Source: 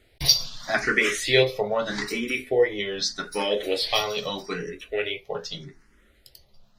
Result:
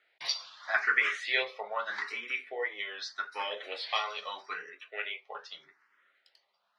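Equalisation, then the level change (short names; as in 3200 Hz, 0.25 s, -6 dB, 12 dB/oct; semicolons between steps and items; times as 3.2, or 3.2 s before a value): ladder band-pass 1500 Hz, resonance 25%; +8.0 dB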